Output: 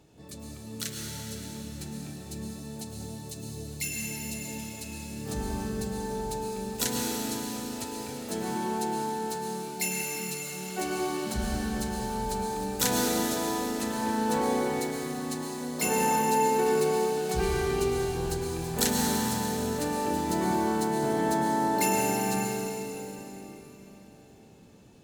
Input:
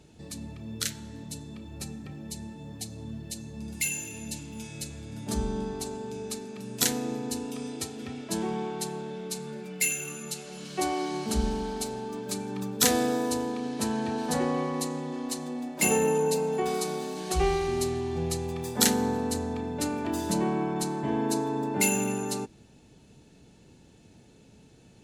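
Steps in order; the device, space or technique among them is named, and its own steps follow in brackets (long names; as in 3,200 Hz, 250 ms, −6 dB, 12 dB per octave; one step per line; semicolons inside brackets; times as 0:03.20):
shimmer-style reverb (pitch-shifted copies added +12 semitones −7 dB; convolution reverb RT60 4.2 s, pre-delay 102 ms, DRR −1.5 dB)
level −5 dB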